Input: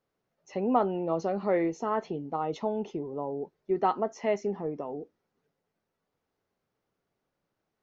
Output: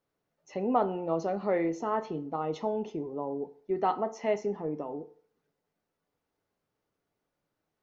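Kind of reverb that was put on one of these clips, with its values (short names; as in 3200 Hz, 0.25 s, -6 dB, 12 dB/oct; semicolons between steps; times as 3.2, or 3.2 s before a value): FDN reverb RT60 0.52 s, low-frequency decay 0.8×, high-frequency decay 0.7×, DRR 10.5 dB; gain -1.5 dB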